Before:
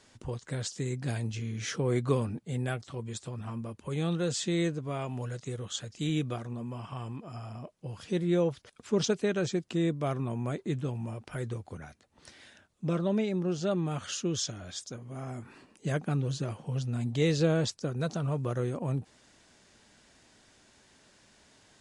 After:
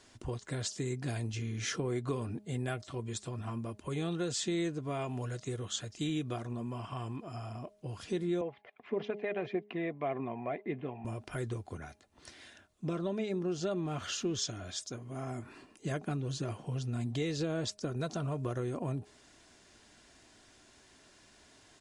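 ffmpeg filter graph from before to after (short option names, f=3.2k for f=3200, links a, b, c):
-filter_complex "[0:a]asettb=1/sr,asplit=3[a][b][c];[a]atrim=end=8.414[d];[b]atrim=start=8.41:end=11.05,asetpts=PTS-STARTPTS,afade=t=in:d=0.004:c=qsin,afade=t=out:st=2.636:d=0.004:c=qsin,aphaser=in_gain=1:out_gain=1:delay=1.7:decay=0.32:speed=1.7:type=triangular,highpass=270,equalizer=f=320:t=q:w=4:g=-6,equalizer=f=740:t=q:w=4:g=5,equalizer=f=1.4k:t=q:w=4:g=-9,equalizer=f=2.1k:t=q:w=4:g=6,lowpass=f=2.5k:w=0.5412,lowpass=f=2.5k:w=1.3066[e];[c]atrim=start=11.046[f];[d][e]acrossfade=d=0.004:c1=hsin:c2=qsin[g];[g][f]acrossfade=d=0.004:c1=qsin:c2=hsin,asettb=1/sr,asplit=3[h][i][j];[h]atrim=end=13.854[k];[i]atrim=start=13.85:end=14.42,asetpts=PTS-STARTPTS,afade=t=in:d=0.004:c=qsin,afade=t=out:st=0.566:d=0.004:c=qsin,aeval=exprs='val(0)+0.5*0.00398*sgn(val(0))':c=same,adynamicsmooth=sensitivity=0.5:basefreq=7.9k[l];[j]atrim=start=14.416[m];[k][l]acrossfade=d=0.004:c1=hsin:c2=qsin[n];[n][m]acrossfade=d=0.004:c1=qsin:c2=hsin,acompressor=threshold=-30dB:ratio=6,aecho=1:1:2.9:0.32,bandreject=f=207.4:t=h:w=4,bandreject=f=414.8:t=h:w=4,bandreject=f=622.2:t=h:w=4,bandreject=f=829.6:t=h:w=4"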